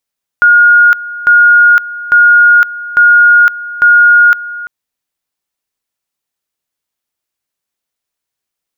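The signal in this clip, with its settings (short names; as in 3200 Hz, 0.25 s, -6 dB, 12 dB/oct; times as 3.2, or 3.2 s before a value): two-level tone 1430 Hz -2 dBFS, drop 17.5 dB, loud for 0.51 s, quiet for 0.34 s, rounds 5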